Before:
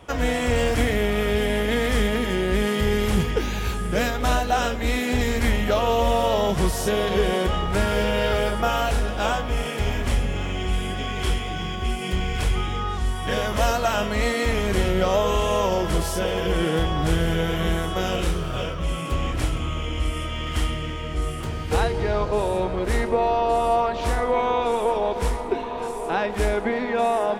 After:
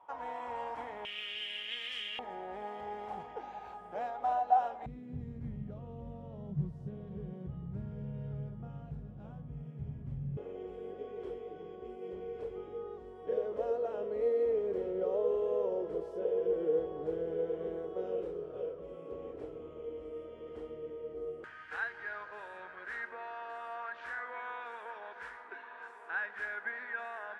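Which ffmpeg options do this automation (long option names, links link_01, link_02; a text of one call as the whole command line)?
ffmpeg -i in.wav -af "asetnsamples=nb_out_samples=441:pad=0,asendcmd='1.05 bandpass f 2900;2.19 bandpass f 790;4.86 bandpass f 140;10.37 bandpass f 450;21.44 bandpass f 1600',bandpass=frequency=910:width_type=q:width=8.5:csg=0" out.wav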